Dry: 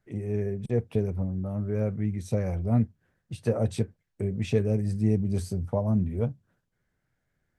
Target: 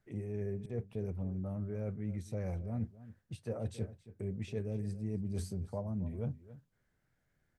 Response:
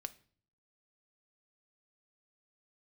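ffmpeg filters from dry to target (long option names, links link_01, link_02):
-filter_complex "[0:a]areverse,acompressor=threshold=-33dB:ratio=6,areverse,asplit=2[link_01][link_02];[link_02]adelay=274.1,volume=-16dB,highshelf=frequency=4000:gain=-6.17[link_03];[link_01][link_03]amix=inputs=2:normalize=0,volume=-1.5dB"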